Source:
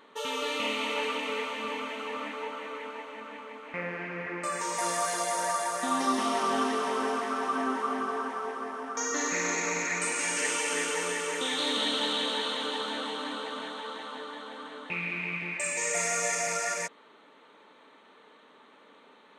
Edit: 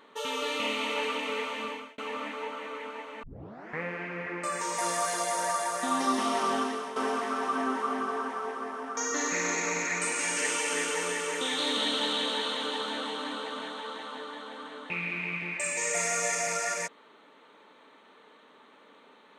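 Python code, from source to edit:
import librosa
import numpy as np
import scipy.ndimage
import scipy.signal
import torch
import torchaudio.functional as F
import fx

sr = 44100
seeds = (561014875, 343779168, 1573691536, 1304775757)

y = fx.edit(x, sr, fx.fade_out_span(start_s=1.62, length_s=0.36),
    fx.tape_start(start_s=3.23, length_s=0.59),
    fx.fade_out_to(start_s=6.49, length_s=0.47, floor_db=-10.5), tone=tone)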